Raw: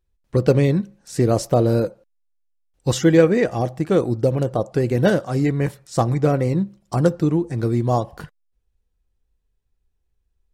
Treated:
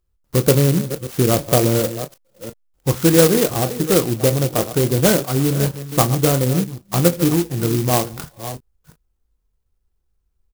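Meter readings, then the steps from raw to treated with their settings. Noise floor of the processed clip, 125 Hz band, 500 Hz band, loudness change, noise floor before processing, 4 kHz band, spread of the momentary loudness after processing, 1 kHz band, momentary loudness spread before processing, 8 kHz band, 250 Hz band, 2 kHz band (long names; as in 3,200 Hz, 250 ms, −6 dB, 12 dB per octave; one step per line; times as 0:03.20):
−69 dBFS, +2.0 dB, +1.0 dB, +2.5 dB, −71 dBFS, +10.0 dB, 16 LU, +2.0 dB, 8 LU, +13.0 dB, +1.5 dB, +2.5 dB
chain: delay that plays each chunk backwards 357 ms, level −12 dB
treble cut that deepens with the level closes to 2,200 Hz, closed at −16.5 dBFS
parametric band 1,300 Hz +8 dB 0.66 octaves
ambience of single reflections 23 ms −11.5 dB, 36 ms −15 dB
converter with an unsteady clock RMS 0.14 ms
level +1 dB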